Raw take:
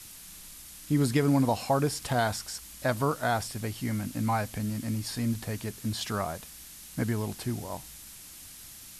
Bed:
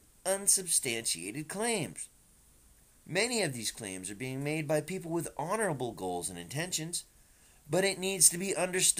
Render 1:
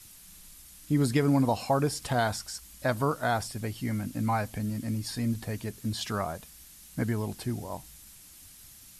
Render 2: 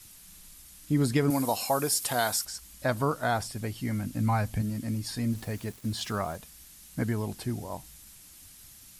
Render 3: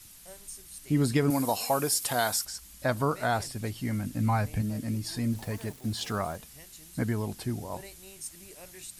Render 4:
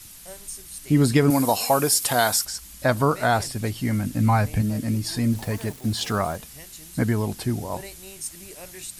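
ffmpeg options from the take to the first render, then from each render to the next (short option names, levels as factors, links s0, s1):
-af "afftdn=nr=6:nf=-47"
-filter_complex "[0:a]asettb=1/sr,asplit=3[s0][s1][s2];[s0]atrim=end=1.304[s3];[s1]atrim=start=1.3:end=2.45,asetpts=PTS-STARTPTS,afade=t=in:d=0.004:c=qsin,afade=t=out:st=1.146:d=0.004:c=qsin,aemphasis=mode=production:type=bsi[s4];[s2]atrim=start=2.446[s5];[s3][s4]acrossfade=d=0.004:c1=hsin:c2=qsin[s6];[s6][s5]acrossfade=d=0.004:c1=qsin:c2=hsin,asettb=1/sr,asplit=3[s7][s8][s9];[s7]atrim=end=3.914[s10];[s8]atrim=start=3.91:end=4.62,asetpts=PTS-STARTPTS,afade=t=in:d=0.004:c=qsin,afade=t=out:st=0.706:d=0.004:c=qsin,asubboost=boost=8:cutoff=220[s11];[s9]atrim=start=4.616[s12];[s10][s11]acrossfade=d=0.004:c1=hsin:c2=qsin[s13];[s13][s12]acrossfade=d=0.004:c1=qsin:c2=hsin,asettb=1/sr,asplit=3[s14][s15][s16];[s14]atrim=end=5.324[s17];[s15]atrim=start=5.32:end=6.36,asetpts=PTS-STARTPTS,afade=t=in:d=0.004:c=qsin,afade=t=out:st=1.036:d=0.004:c=qsin,aeval=exprs='val(0)*gte(abs(val(0)),0.00447)':c=same[s18];[s16]atrim=start=6.356[s19];[s17][s18]acrossfade=d=0.004:c1=hsin:c2=qsin[s20];[s20][s19]acrossfade=d=0.004:c1=qsin:c2=hsin"
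-filter_complex "[1:a]volume=0.119[s0];[0:a][s0]amix=inputs=2:normalize=0"
-af "volume=2.24"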